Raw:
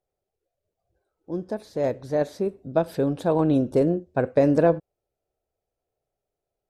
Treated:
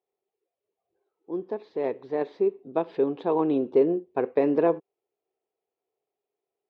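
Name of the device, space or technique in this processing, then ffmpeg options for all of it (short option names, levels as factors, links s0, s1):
phone earpiece: -af "highpass=340,equalizer=f=400:t=q:w=4:g=7,equalizer=f=590:t=q:w=4:g=-10,equalizer=f=1000:t=q:w=4:g=3,equalizer=f=1500:t=q:w=4:g=-9,lowpass=f=3200:w=0.5412,lowpass=f=3200:w=1.3066"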